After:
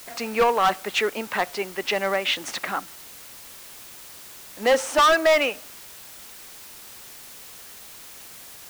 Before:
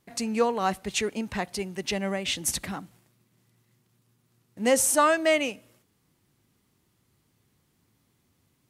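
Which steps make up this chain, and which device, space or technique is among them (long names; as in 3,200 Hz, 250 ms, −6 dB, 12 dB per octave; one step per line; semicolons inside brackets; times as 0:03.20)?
drive-through speaker (band-pass filter 470–3,000 Hz; parametric band 1,300 Hz +5 dB 0.45 octaves; hard clipping −23 dBFS, distortion −7 dB; white noise bed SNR 17 dB)
level +9 dB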